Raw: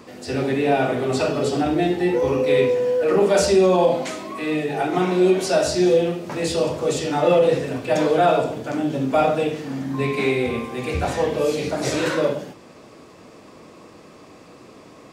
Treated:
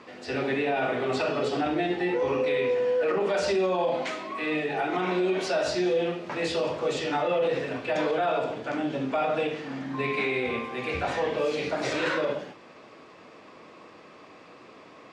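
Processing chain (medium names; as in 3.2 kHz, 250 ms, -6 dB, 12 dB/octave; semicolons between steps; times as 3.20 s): low-pass 2.6 kHz 12 dB/octave; tilt EQ +3 dB/octave; peak limiter -16.5 dBFS, peak gain reduction 8.5 dB; trim -1.5 dB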